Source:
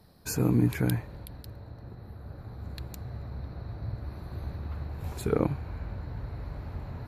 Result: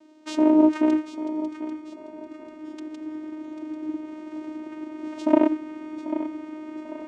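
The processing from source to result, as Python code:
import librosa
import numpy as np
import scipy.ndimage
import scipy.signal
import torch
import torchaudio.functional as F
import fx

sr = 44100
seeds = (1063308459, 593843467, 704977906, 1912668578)

y = fx.vocoder(x, sr, bands=4, carrier='saw', carrier_hz=309.0)
y = fx.echo_feedback(y, sr, ms=792, feedback_pct=41, wet_db=-12.0)
y = y * 10.0 ** (7.5 / 20.0)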